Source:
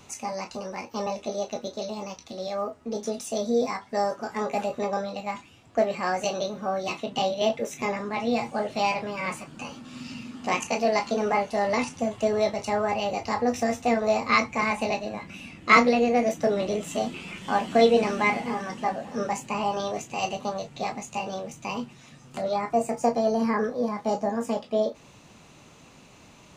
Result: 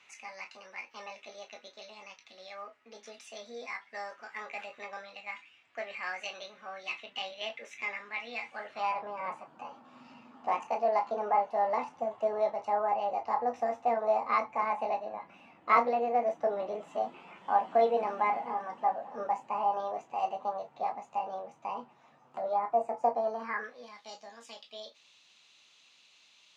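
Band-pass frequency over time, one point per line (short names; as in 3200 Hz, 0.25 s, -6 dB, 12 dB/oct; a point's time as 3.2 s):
band-pass, Q 2.2
8.51 s 2200 Hz
9.09 s 850 Hz
23.17 s 850 Hz
23.97 s 3700 Hz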